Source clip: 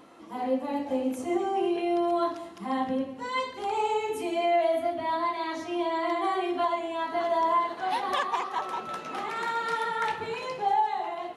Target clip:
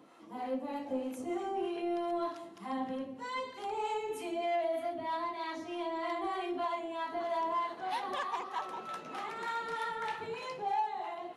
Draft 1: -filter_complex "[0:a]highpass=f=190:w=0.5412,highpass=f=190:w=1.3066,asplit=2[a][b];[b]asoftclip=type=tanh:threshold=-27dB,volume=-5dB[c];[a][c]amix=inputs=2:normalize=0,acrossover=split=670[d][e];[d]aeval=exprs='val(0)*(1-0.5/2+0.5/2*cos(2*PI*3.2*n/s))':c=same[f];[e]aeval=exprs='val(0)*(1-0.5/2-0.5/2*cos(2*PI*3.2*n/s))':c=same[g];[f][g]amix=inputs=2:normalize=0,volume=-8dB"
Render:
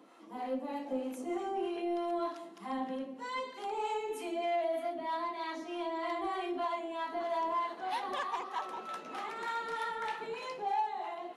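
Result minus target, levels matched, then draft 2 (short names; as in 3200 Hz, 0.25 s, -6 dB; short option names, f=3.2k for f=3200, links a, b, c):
125 Hz band -5.5 dB
-filter_complex "[0:a]highpass=f=92:w=0.5412,highpass=f=92:w=1.3066,asplit=2[a][b];[b]asoftclip=type=tanh:threshold=-27dB,volume=-5dB[c];[a][c]amix=inputs=2:normalize=0,acrossover=split=670[d][e];[d]aeval=exprs='val(0)*(1-0.5/2+0.5/2*cos(2*PI*3.2*n/s))':c=same[f];[e]aeval=exprs='val(0)*(1-0.5/2-0.5/2*cos(2*PI*3.2*n/s))':c=same[g];[f][g]amix=inputs=2:normalize=0,volume=-8dB"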